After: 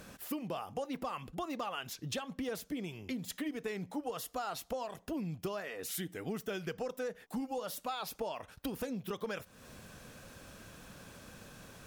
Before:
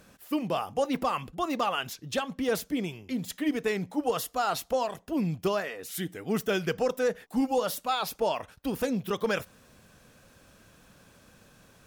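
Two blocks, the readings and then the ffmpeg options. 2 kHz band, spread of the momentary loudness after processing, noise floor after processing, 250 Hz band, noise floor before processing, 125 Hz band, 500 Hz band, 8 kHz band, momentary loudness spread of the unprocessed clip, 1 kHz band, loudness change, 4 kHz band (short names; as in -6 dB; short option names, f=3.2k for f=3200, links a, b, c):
-9.5 dB, 13 LU, -61 dBFS, -9.0 dB, -59 dBFS, -7.5 dB, -10.5 dB, -5.5 dB, 6 LU, -10.5 dB, -9.5 dB, -8.5 dB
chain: -af "acompressor=threshold=-42dB:ratio=5,volume=4.5dB"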